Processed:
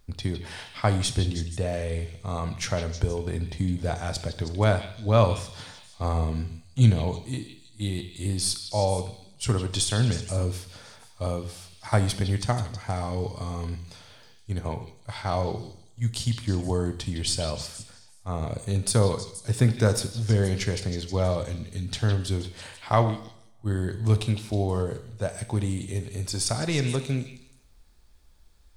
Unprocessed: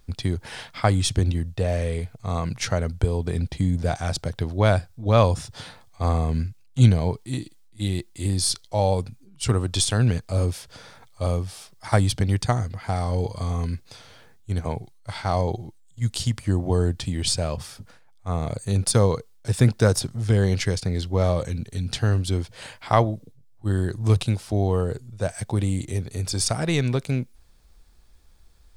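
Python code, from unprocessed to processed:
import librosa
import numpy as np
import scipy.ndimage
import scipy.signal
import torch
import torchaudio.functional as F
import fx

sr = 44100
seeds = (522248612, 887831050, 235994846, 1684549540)

y = fx.echo_stepped(x, sr, ms=159, hz=3200.0, octaves=0.7, feedback_pct=70, wet_db=-6)
y = fx.rev_double_slope(y, sr, seeds[0], early_s=0.69, late_s=1.8, knee_db=-27, drr_db=8.0)
y = F.gain(torch.from_numpy(y), -3.5).numpy()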